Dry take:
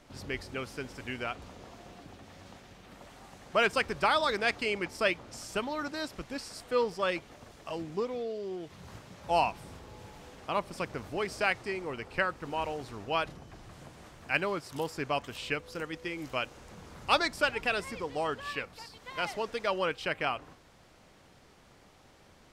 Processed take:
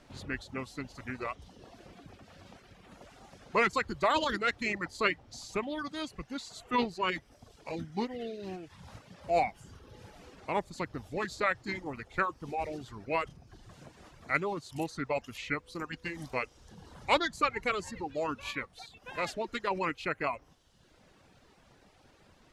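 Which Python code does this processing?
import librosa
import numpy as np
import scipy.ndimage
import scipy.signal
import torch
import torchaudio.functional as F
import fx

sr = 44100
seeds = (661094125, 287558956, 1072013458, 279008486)

y = fx.dereverb_blind(x, sr, rt60_s=0.95)
y = fx.formant_shift(y, sr, semitones=-3)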